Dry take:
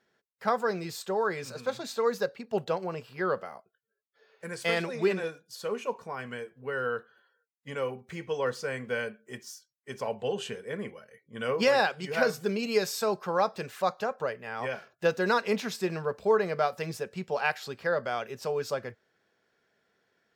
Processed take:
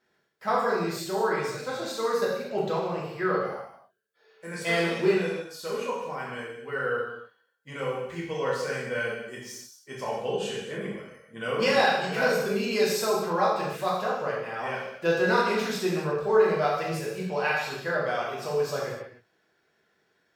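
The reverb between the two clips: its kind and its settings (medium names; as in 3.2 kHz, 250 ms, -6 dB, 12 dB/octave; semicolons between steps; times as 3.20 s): gated-style reverb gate 330 ms falling, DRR -6 dB; trim -3.5 dB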